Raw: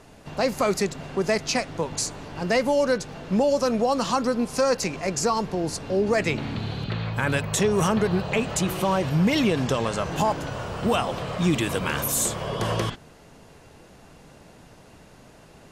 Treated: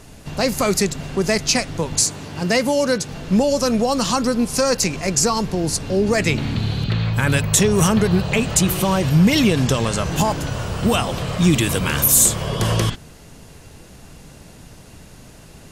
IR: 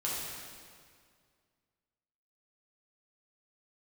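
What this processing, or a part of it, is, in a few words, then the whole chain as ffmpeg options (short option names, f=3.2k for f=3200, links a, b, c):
smiley-face EQ: -filter_complex "[0:a]asettb=1/sr,asplit=3[a][b][c];[a]atrim=end=2.014[d];[b]atrim=start=2.01:end=3.09,asetpts=PTS-STARTPTS,afade=t=in:d=0.004:c=qsin,afade=t=out:st=1.076:d=0.004:c=qsin,highpass=91[e];[c]atrim=start=3.086[f];[d][e]acrossfade=d=0.004:c1=hsin:c2=qsin[g];[g][f]acrossfade=d=0.004:c1=qsin:c2=hsin,lowshelf=f=130:g=6.5,equalizer=f=750:t=o:w=2.4:g=-4.5,highshelf=f=5.9k:g=8,volume=6dB"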